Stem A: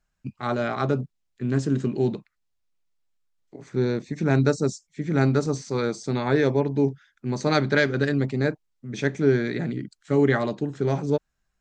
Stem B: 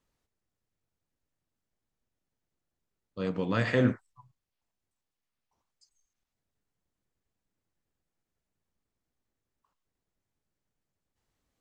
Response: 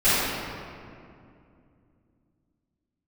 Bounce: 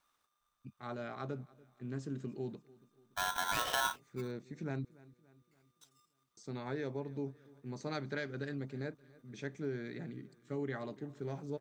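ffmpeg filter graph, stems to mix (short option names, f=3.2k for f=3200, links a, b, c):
-filter_complex "[0:a]adelay=400,volume=-16.5dB,asplit=3[a][b][c];[a]atrim=end=4.85,asetpts=PTS-STARTPTS,afade=t=out:st=4.846:d=0.004:c=hsin[d];[b]atrim=start=4.85:end=6.37,asetpts=PTS-STARTPTS,volume=0[e];[c]atrim=start=6.37,asetpts=PTS-STARTPTS,afade=t=in:d=0.004:c=hsin[f];[d][e][f]concat=n=3:v=0:a=1,asplit=2[g][h];[h]volume=-23dB[i];[1:a]aeval=exprs='val(0)*sgn(sin(2*PI*1200*n/s))':c=same,volume=2dB[j];[i]aecho=0:1:288|576|864|1152|1440|1728|2016:1|0.49|0.24|0.118|0.0576|0.0282|0.0138[k];[g][j][k]amix=inputs=3:normalize=0,acompressor=threshold=-34dB:ratio=3"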